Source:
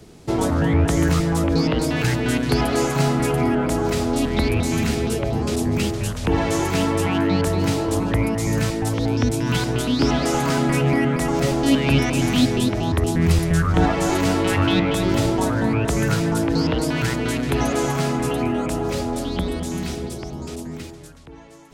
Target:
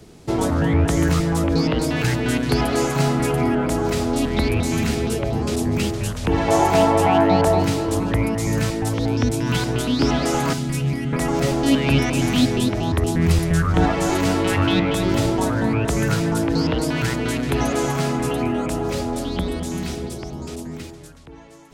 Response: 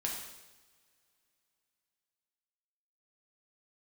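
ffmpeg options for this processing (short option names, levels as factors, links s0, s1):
-filter_complex "[0:a]asettb=1/sr,asplit=3[s0][s1][s2];[s0]atrim=end=6.484[s3];[s1]atrim=start=6.48:end=7.63,asetpts=PTS-STARTPTS,afade=t=in:d=0.004:c=qsin,afade=t=out:st=1.146:d=0.004:c=qsin,equalizer=f=740:t=o:w=0.77:g=15[s4];[s2]atrim=start=7.626[s5];[s3][s4]acrossfade=d=0.004:c1=hsin:c2=qsin[s6];[s6][s5]acrossfade=d=0.004:c1=qsin:c2=hsin,asettb=1/sr,asplit=3[s7][s8][s9];[s7]atrim=end=10.534[s10];[s8]atrim=start=10.53:end=11.13,asetpts=PTS-STARTPTS,afade=t=in:d=0.004:c=qsin,afade=t=out:st=0.596:d=0.004:c=qsin,acrossover=split=220|3000[s11][s12][s13];[s12]acompressor=threshold=0.00631:ratio=2[s14];[s11][s14][s13]amix=inputs=3:normalize=0[s15];[s9]atrim=start=11.126[s16];[s10][s15]acrossfade=d=0.004:c1=hsin:c2=qsin[s17];[s17][s16]acrossfade=d=0.004:c1=qsin:c2=hsin"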